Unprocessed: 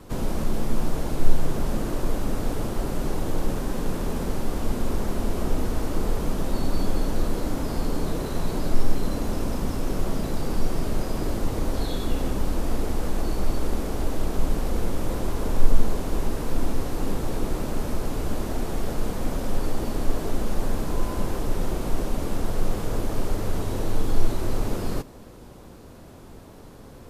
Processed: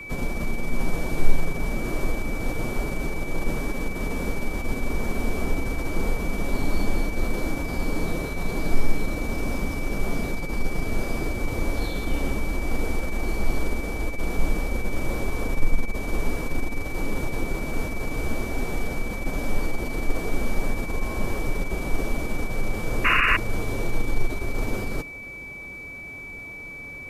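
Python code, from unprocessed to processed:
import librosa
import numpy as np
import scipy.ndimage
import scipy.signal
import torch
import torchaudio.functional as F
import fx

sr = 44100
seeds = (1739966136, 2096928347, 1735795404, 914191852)

y = fx.pitch_keep_formants(x, sr, semitones=1.0)
y = y + 10.0 ** (-36.0 / 20.0) * np.sin(2.0 * np.pi * 2300.0 * np.arange(len(y)) / sr)
y = fx.spec_paint(y, sr, seeds[0], shape='noise', start_s=23.04, length_s=0.33, low_hz=1000.0, high_hz=2900.0, level_db=-20.0)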